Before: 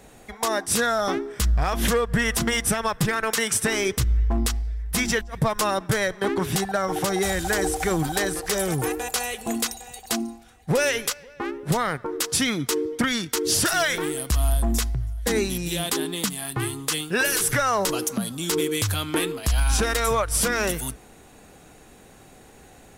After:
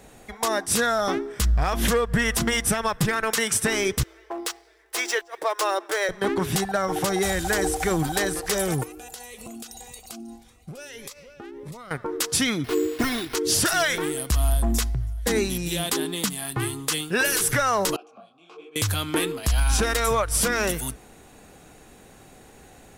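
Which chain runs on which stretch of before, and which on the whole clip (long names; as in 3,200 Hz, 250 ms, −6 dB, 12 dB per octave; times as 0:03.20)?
0:04.03–0:06.09: running median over 3 samples + elliptic high-pass filter 330 Hz
0:08.83–0:11.91: parametric band 1,700 Hz −4 dB 0.25 octaves + downward compressor 16 to 1, threshold −34 dBFS + phaser whose notches keep moving one way rising 1.7 Hz
0:12.64–0:13.35: linear delta modulator 32 kbit/s, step −36 dBFS + comb filter 2.8 ms, depth 71% + bad sample-rate conversion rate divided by 6×, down none, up hold
0:17.96–0:18.76: formant filter a + high-frequency loss of the air 81 metres + micro pitch shift up and down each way 43 cents
whole clip: no processing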